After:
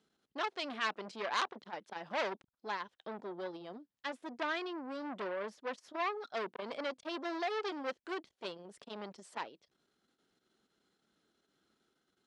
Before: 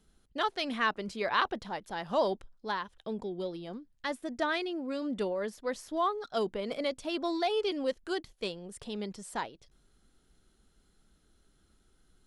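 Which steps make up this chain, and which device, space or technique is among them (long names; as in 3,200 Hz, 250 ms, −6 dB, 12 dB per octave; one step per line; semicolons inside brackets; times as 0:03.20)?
public-address speaker with an overloaded transformer (saturating transformer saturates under 4,000 Hz; band-pass filter 240–5,600 Hz)
level −2.5 dB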